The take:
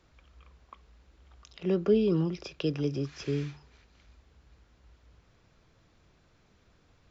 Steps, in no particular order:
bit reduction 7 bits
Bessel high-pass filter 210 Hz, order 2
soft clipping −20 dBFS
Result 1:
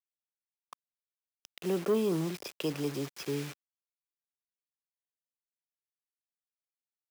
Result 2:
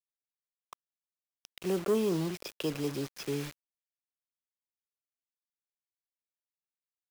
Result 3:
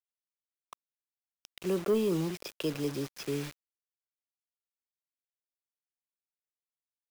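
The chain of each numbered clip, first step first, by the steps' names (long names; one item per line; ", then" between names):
bit reduction, then soft clipping, then Bessel high-pass filter
soft clipping, then Bessel high-pass filter, then bit reduction
Bessel high-pass filter, then bit reduction, then soft clipping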